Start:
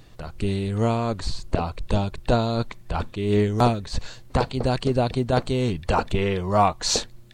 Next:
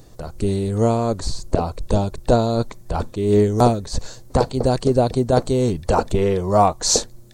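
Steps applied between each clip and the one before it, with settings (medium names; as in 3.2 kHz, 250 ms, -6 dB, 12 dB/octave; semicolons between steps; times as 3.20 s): FFT filter 180 Hz 0 dB, 500 Hz +4 dB, 2.8 kHz -9 dB, 6.2 kHz +5 dB; trim +3 dB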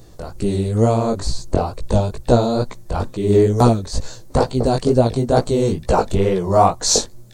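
chorus 2.2 Hz, delay 15.5 ms, depth 6.7 ms; trim +4.5 dB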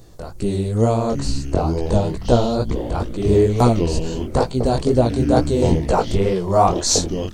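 ever faster or slower copies 528 ms, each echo -6 st, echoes 3, each echo -6 dB; trim -1.5 dB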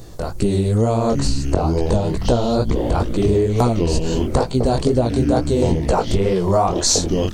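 compression, threshold -21 dBFS, peak gain reduction 11.5 dB; trim +7.5 dB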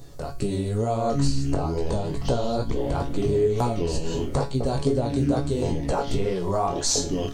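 feedback comb 140 Hz, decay 0.31 s, harmonics all, mix 80%; trim +2 dB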